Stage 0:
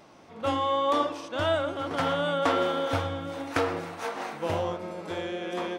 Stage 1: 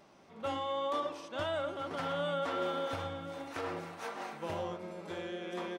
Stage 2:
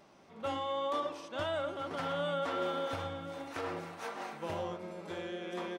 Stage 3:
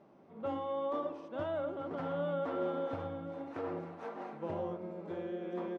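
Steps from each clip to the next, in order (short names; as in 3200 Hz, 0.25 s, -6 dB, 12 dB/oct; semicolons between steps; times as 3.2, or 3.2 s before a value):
limiter -19 dBFS, peak gain reduction 8 dB; comb 5.1 ms, depth 31%; gain -7.5 dB
nothing audible
band-pass 270 Hz, Q 0.54; gain +2.5 dB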